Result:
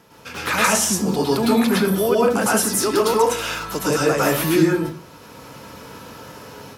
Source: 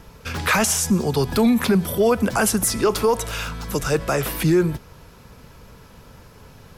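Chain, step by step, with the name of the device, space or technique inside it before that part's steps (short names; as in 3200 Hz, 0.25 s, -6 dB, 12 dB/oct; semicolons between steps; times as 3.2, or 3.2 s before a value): far laptop microphone (reverb RT60 0.40 s, pre-delay 0.102 s, DRR -5 dB; HPF 190 Hz 12 dB/oct; AGC gain up to 8 dB); gain -4 dB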